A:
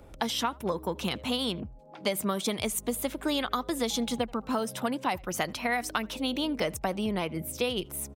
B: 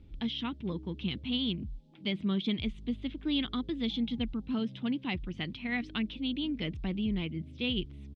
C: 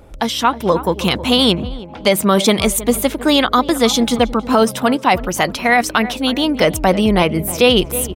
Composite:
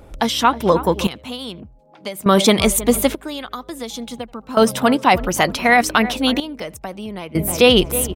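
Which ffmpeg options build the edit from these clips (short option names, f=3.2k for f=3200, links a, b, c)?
-filter_complex "[0:a]asplit=3[a][b][c];[2:a]asplit=4[d][e][f][g];[d]atrim=end=1.072[h];[a]atrim=start=1.068:end=2.262[i];[e]atrim=start=2.258:end=3.152[j];[b]atrim=start=3.148:end=4.572[k];[f]atrim=start=4.568:end=6.402[l];[c]atrim=start=6.398:end=7.352[m];[g]atrim=start=7.348[n];[h][i]acrossfade=d=0.004:c1=hsin:c2=hsin[o];[o][j]acrossfade=d=0.004:c1=hsin:c2=hsin[p];[p][k]acrossfade=d=0.004:c1=hsin:c2=hsin[q];[q][l]acrossfade=d=0.004:c1=hsin:c2=hsin[r];[r][m]acrossfade=d=0.004:c1=hsin:c2=hsin[s];[s][n]acrossfade=d=0.004:c1=hsin:c2=hsin"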